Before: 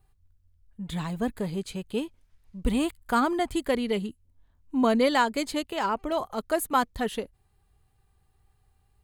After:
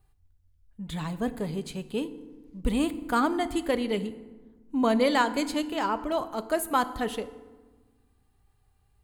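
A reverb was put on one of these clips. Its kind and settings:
feedback delay network reverb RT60 1.3 s, low-frequency decay 1.5×, high-frequency decay 0.6×, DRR 12 dB
level −1 dB

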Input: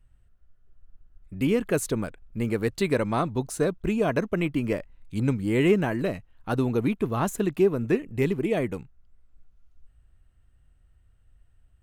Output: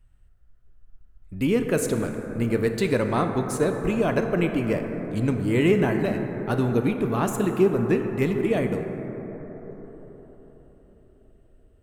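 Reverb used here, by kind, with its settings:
dense smooth reverb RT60 4.8 s, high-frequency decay 0.25×, DRR 4.5 dB
level +1 dB

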